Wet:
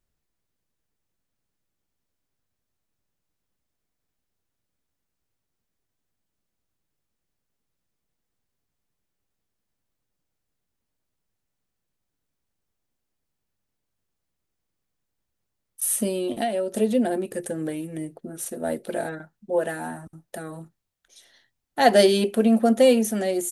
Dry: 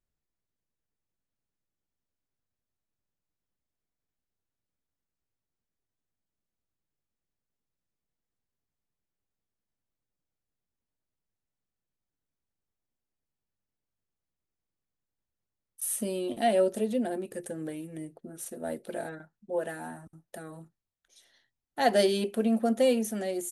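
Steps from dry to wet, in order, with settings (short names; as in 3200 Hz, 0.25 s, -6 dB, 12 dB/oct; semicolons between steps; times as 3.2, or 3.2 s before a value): 16.07–16.74 compressor 10:1, threshold -30 dBFS, peak gain reduction 11 dB; gain +7.5 dB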